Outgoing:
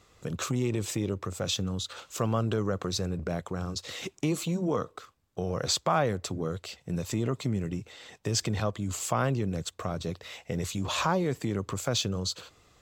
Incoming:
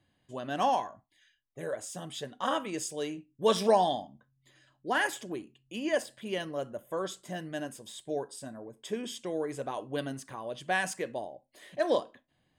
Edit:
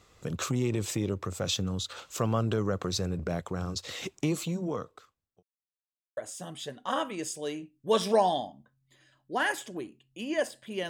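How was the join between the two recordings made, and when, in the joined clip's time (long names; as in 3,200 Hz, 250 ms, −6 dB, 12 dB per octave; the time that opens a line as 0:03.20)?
outgoing
0:04.23–0:05.43: fade out linear
0:05.43–0:06.17: silence
0:06.17: continue with incoming from 0:01.72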